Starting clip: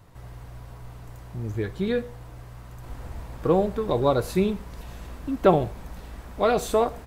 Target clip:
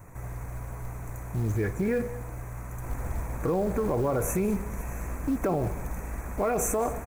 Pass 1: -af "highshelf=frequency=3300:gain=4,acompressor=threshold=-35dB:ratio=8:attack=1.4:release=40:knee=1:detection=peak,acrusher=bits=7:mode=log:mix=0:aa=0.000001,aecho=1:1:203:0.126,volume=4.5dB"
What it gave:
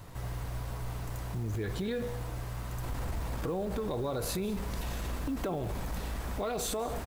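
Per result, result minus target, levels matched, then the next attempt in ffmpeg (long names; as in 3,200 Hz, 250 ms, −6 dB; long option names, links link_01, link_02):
4,000 Hz band +18.0 dB; downward compressor: peak gain reduction +7 dB
-af "asuperstop=centerf=3900:order=20:qfactor=1.2,highshelf=frequency=3300:gain=4,acompressor=threshold=-35dB:ratio=8:attack=1.4:release=40:knee=1:detection=peak,acrusher=bits=7:mode=log:mix=0:aa=0.000001,aecho=1:1:203:0.126,volume=4.5dB"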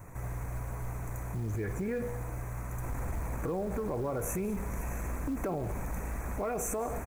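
downward compressor: peak gain reduction +7 dB
-af "asuperstop=centerf=3900:order=20:qfactor=1.2,highshelf=frequency=3300:gain=4,acompressor=threshold=-27dB:ratio=8:attack=1.4:release=40:knee=1:detection=peak,acrusher=bits=7:mode=log:mix=0:aa=0.000001,aecho=1:1:203:0.126,volume=4.5dB"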